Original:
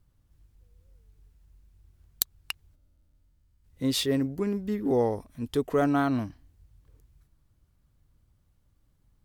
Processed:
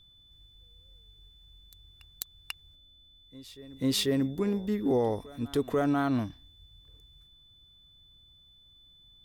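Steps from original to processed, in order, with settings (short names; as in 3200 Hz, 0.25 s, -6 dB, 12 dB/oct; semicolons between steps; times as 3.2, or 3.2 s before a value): limiter -18 dBFS, peak gain reduction 11 dB; whine 3500 Hz -56 dBFS; reverse echo 0.491 s -21 dB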